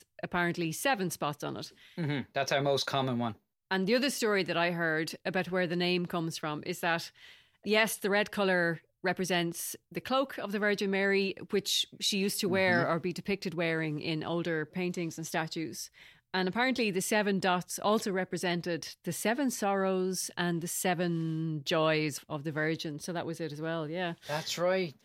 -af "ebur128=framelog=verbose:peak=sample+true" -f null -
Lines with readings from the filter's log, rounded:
Integrated loudness:
  I:         -31.3 LUFS
  Threshold: -41.4 LUFS
Loudness range:
  LRA:         3.2 LU
  Threshold: -51.3 LUFS
  LRA low:   -33.0 LUFS
  LRA high:  -29.7 LUFS
Sample peak:
  Peak:      -12.5 dBFS
True peak:
  Peak:      -12.4 dBFS